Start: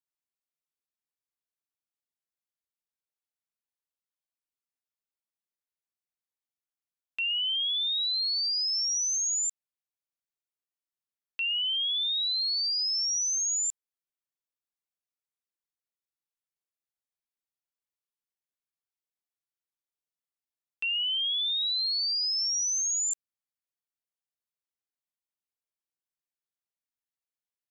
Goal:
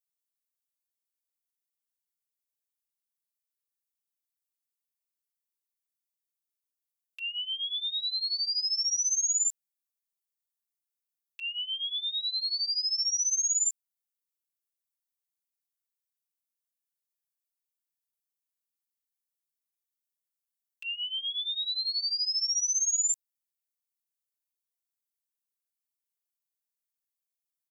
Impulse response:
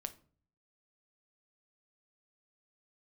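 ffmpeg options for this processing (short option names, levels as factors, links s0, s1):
-af "aderivative,aecho=1:1:6.1:0.77"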